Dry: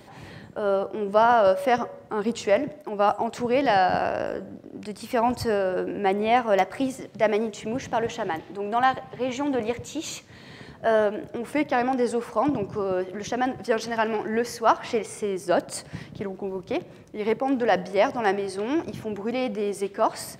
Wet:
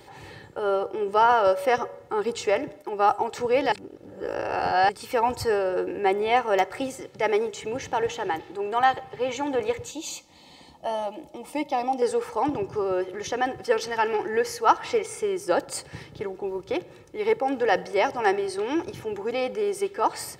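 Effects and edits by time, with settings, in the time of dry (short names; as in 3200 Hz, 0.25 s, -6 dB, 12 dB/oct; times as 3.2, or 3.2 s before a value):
3.72–4.89 reverse
9.91–12.02 fixed phaser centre 420 Hz, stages 6
whole clip: low shelf 430 Hz -3.5 dB; comb 2.3 ms, depth 59%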